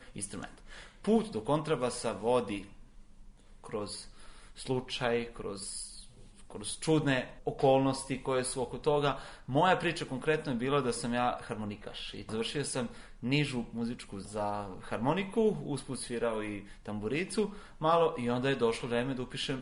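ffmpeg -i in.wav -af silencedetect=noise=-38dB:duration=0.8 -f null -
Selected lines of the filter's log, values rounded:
silence_start: 2.61
silence_end: 3.64 | silence_duration: 1.02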